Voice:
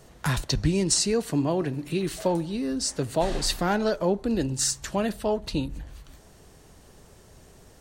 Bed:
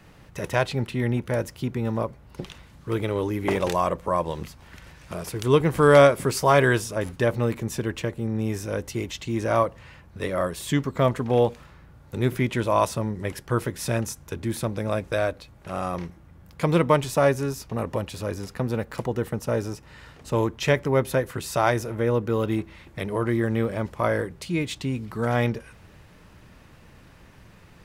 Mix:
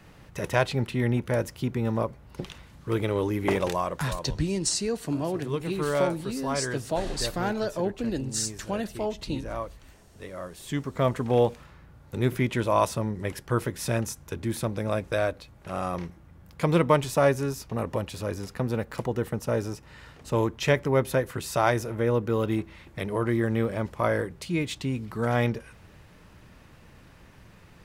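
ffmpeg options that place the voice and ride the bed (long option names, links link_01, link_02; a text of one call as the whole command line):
ffmpeg -i stem1.wav -i stem2.wav -filter_complex "[0:a]adelay=3750,volume=-4dB[link_01];[1:a]volume=10.5dB,afade=type=out:start_time=3.5:duration=0.59:silence=0.251189,afade=type=in:start_time=10.47:duration=0.76:silence=0.281838[link_02];[link_01][link_02]amix=inputs=2:normalize=0" out.wav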